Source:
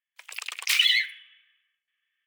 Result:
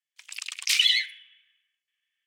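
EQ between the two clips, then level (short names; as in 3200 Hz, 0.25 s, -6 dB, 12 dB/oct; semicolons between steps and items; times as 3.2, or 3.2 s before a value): band-pass 6500 Hz, Q 0.83; high shelf 8300 Hz -5 dB; +5.5 dB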